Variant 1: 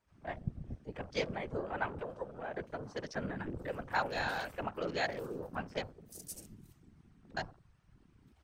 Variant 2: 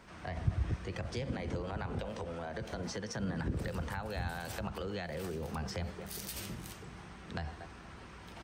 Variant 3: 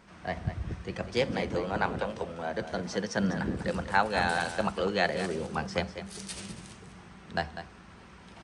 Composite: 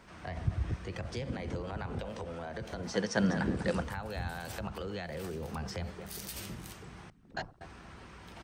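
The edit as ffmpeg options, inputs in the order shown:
-filter_complex "[1:a]asplit=3[s0][s1][s2];[s0]atrim=end=2.942[s3];[2:a]atrim=start=2.938:end=3.832[s4];[s1]atrim=start=3.828:end=7.102[s5];[0:a]atrim=start=7.098:end=7.612[s6];[s2]atrim=start=7.608[s7];[s3][s4]acrossfade=d=0.004:c1=hsin:c2=hsin[s8];[s8][s5]acrossfade=d=0.004:c1=hsin:c2=hsin[s9];[s9][s6]acrossfade=d=0.004:c1=hsin:c2=hsin[s10];[s10][s7]acrossfade=d=0.004:c1=hsin:c2=hsin"

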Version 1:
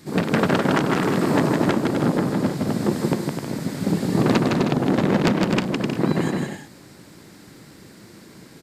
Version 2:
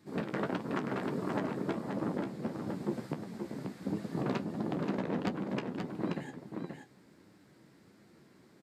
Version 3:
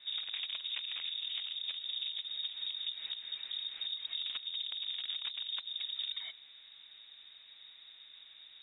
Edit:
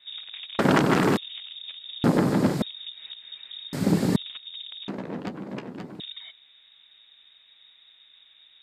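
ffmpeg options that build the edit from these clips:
-filter_complex "[0:a]asplit=3[s0][s1][s2];[2:a]asplit=5[s3][s4][s5][s6][s7];[s3]atrim=end=0.592[s8];[s0]atrim=start=0.588:end=1.172[s9];[s4]atrim=start=1.168:end=2.042[s10];[s1]atrim=start=2.038:end=2.622[s11];[s5]atrim=start=2.618:end=3.732[s12];[s2]atrim=start=3.728:end=4.162[s13];[s6]atrim=start=4.158:end=4.882[s14];[1:a]atrim=start=4.878:end=6.002[s15];[s7]atrim=start=5.998[s16];[s8][s9]acrossfade=d=0.004:c1=hsin:c2=hsin[s17];[s17][s10]acrossfade=d=0.004:c1=hsin:c2=hsin[s18];[s18][s11]acrossfade=d=0.004:c1=hsin:c2=hsin[s19];[s19][s12]acrossfade=d=0.004:c1=hsin:c2=hsin[s20];[s20][s13]acrossfade=d=0.004:c1=hsin:c2=hsin[s21];[s21][s14]acrossfade=d=0.004:c1=hsin:c2=hsin[s22];[s22][s15]acrossfade=d=0.004:c1=hsin:c2=hsin[s23];[s23][s16]acrossfade=d=0.004:c1=hsin:c2=hsin"

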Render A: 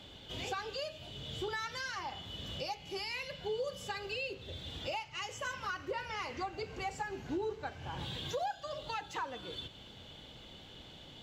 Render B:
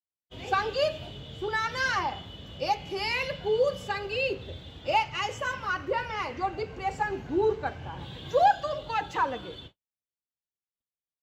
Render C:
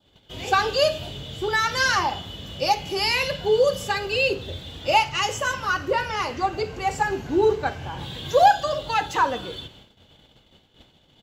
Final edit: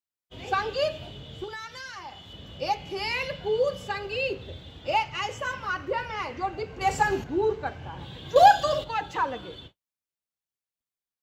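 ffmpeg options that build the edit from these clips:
-filter_complex "[2:a]asplit=2[s0][s1];[1:a]asplit=4[s2][s3][s4][s5];[s2]atrim=end=1.442[s6];[0:a]atrim=start=1.438:end=2.332[s7];[s3]atrim=start=2.328:end=6.812[s8];[s0]atrim=start=6.808:end=7.242[s9];[s4]atrim=start=7.238:end=8.362[s10];[s1]atrim=start=8.358:end=8.842[s11];[s5]atrim=start=8.838[s12];[s6][s7]acrossfade=d=0.004:c1=hsin:c2=hsin[s13];[s13][s8]acrossfade=d=0.004:c1=hsin:c2=hsin[s14];[s14][s9]acrossfade=d=0.004:c1=hsin:c2=hsin[s15];[s15][s10]acrossfade=d=0.004:c1=hsin:c2=hsin[s16];[s16][s11]acrossfade=d=0.004:c1=hsin:c2=hsin[s17];[s17][s12]acrossfade=d=0.004:c1=hsin:c2=hsin"

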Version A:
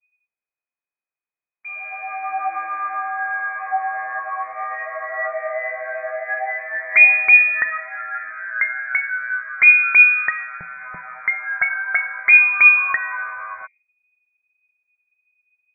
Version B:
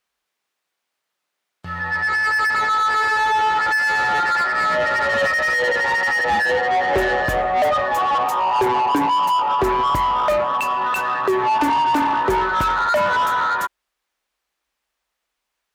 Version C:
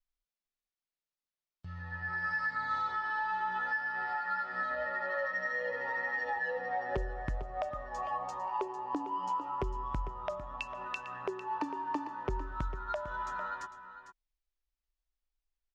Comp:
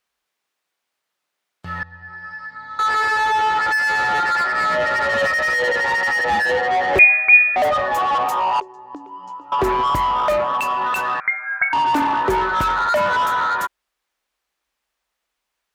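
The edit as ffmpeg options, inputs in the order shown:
-filter_complex "[2:a]asplit=2[s0][s1];[0:a]asplit=2[s2][s3];[1:a]asplit=5[s4][s5][s6][s7][s8];[s4]atrim=end=1.832[s9];[s0]atrim=start=1.828:end=2.792[s10];[s5]atrim=start=2.788:end=6.992[s11];[s2]atrim=start=6.988:end=7.562[s12];[s6]atrim=start=7.558:end=8.602[s13];[s1]atrim=start=8.598:end=9.522[s14];[s7]atrim=start=9.518:end=11.202[s15];[s3]atrim=start=11.198:end=11.732[s16];[s8]atrim=start=11.728[s17];[s9][s10]acrossfade=d=0.004:c1=hsin:c2=hsin[s18];[s18][s11]acrossfade=d=0.004:c1=hsin:c2=hsin[s19];[s19][s12]acrossfade=d=0.004:c1=hsin:c2=hsin[s20];[s20][s13]acrossfade=d=0.004:c1=hsin:c2=hsin[s21];[s21][s14]acrossfade=d=0.004:c1=hsin:c2=hsin[s22];[s22][s15]acrossfade=d=0.004:c1=hsin:c2=hsin[s23];[s23][s16]acrossfade=d=0.004:c1=hsin:c2=hsin[s24];[s24][s17]acrossfade=d=0.004:c1=hsin:c2=hsin"

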